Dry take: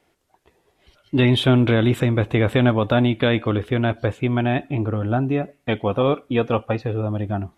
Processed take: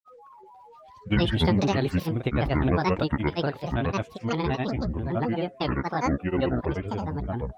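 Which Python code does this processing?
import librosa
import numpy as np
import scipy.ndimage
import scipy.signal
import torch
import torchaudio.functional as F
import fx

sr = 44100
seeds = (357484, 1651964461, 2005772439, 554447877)

y = x + 10.0 ** (-41.0 / 20.0) * np.sin(2.0 * np.pi * 710.0 * np.arange(len(x)) / sr)
y = fx.granulator(y, sr, seeds[0], grain_ms=100.0, per_s=23.0, spray_ms=100.0, spread_st=12)
y = F.gain(torch.from_numpy(y), -4.5).numpy()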